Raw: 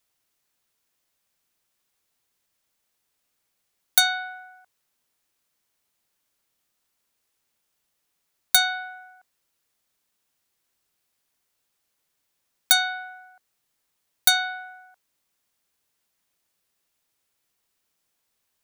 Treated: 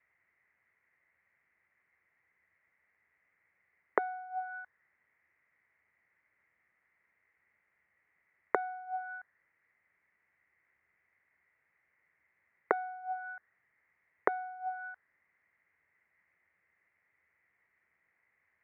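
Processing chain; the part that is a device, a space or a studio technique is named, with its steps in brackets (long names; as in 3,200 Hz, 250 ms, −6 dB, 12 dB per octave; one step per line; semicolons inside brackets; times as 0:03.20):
envelope filter bass rig (envelope-controlled low-pass 410–2,100 Hz down, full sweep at −25.5 dBFS; loudspeaker in its box 67–2,100 Hz, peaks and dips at 80 Hz +7 dB, 260 Hz −5 dB, 2,000 Hz +9 dB)
high-shelf EQ 3,900 Hz −6 dB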